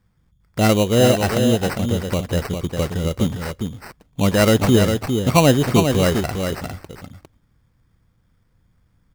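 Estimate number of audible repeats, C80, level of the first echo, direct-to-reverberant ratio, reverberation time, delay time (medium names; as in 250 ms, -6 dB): 1, no reverb, -6.0 dB, no reverb, no reverb, 404 ms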